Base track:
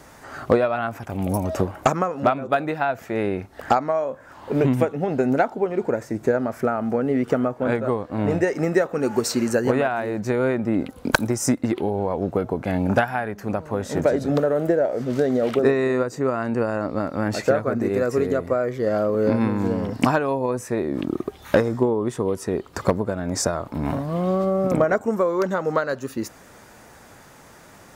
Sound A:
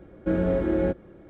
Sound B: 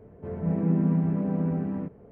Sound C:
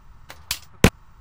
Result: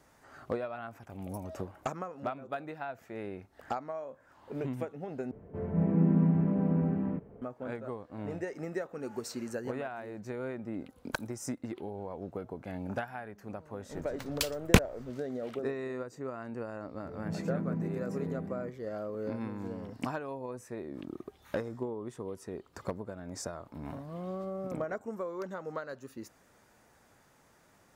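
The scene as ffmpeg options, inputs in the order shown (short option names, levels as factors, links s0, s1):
-filter_complex "[2:a]asplit=2[s0][s1];[0:a]volume=0.15,asplit=2[s2][s3];[s2]atrim=end=5.314[s4];[s0]atrim=end=2.11,asetpts=PTS-STARTPTS,volume=0.841[s5];[s3]atrim=start=7.416[s6];[3:a]atrim=end=1.2,asetpts=PTS-STARTPTS,volume=0.501,afade=t=in:d=0.004:c=hsin,afade=t=out:st=1.196:d=0.004:c=hsin,adelay=13900[s7];[s1]atrim=end=2.11,asetpts=PTS-STARTPTS,volume=0.282,afade=t=in:d=0.004:c=hsin,afade=t=out:st=2.106:d=0.004:c=hsin,adelay=16820[s8];[s4][s5]acrossfade=d=0.004:c1=hsin:c2=hsin[s9];[s9][s6]acrossfade=d=0.004:c1=hsin:c2=hsin[s10];[s10][s7][s8]amix=inputs=3:normalize=0"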